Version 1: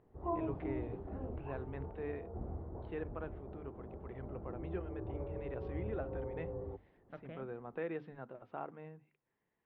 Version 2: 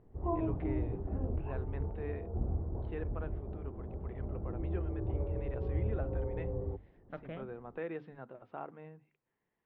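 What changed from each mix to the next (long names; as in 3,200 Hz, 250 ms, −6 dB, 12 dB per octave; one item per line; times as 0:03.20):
second voice +5.5 dB
background: add spectral tilt −2.5 dB per octave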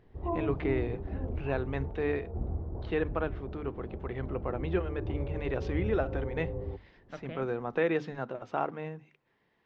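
first voice +11.0 dB
master: remove high-frequency loss of the air 340 metres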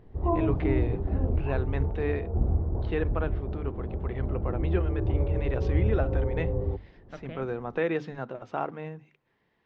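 background +6.0 dB
master: add low-shelf EQ 140 Hz +4 dB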